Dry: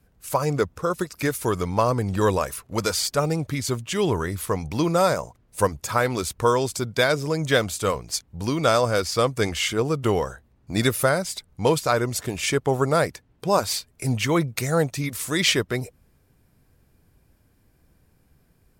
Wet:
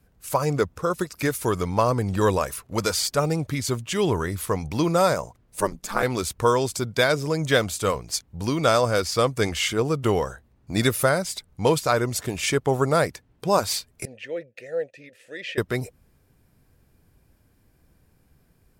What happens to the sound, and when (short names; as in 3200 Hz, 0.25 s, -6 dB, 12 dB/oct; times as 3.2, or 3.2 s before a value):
5.6–6.03 ring modulator 99 Hz
14.05–15.58 vowel filter e